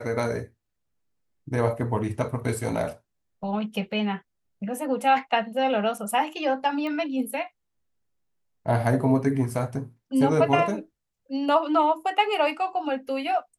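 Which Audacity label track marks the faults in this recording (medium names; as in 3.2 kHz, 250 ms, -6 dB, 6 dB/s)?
6.870000	6.870000	pop -22 dBFS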